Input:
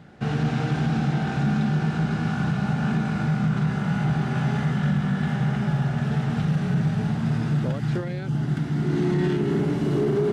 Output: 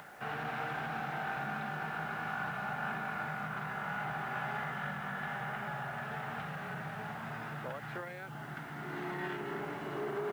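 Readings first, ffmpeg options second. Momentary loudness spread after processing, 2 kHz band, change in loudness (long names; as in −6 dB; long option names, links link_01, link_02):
5 LU, −3.0 dB, −14.5 dB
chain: -filter_complex "[0:a]acrossover=split=600 2500:gain=0.112 1 0.126[link_01][link_02][link_03];[link_01][link_02][link_03]amix=inputs=3:normalize=0,acompressor=mode=upward:threshold=-41dB:ratio=2.5,lowshelf=frequency=340:gain=-3.5,asplit=2[link_04][link_05];[link_05]aecho=0:1:82:0.0668[link_06];[link_04][link_06]amix=inputs=2:normalize=0,acrusher=bits=9:mix=0:aa=0.000001,volume=-1.5dB"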